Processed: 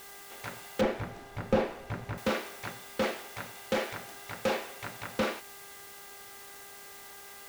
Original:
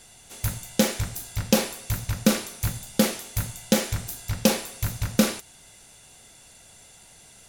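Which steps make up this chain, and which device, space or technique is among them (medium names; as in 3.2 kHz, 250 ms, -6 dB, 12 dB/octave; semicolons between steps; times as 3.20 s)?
aircraft radio (band-pass 370–2400 Hz; hard clipper -23.5 dBFS, distortion -8 dB; mains buzz 400 Hz, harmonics 5, -54 dBFS 0 dB/octave; white noise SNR 13 dB); 0.81–2.18 s: tilt EQ -3.5 dB/octave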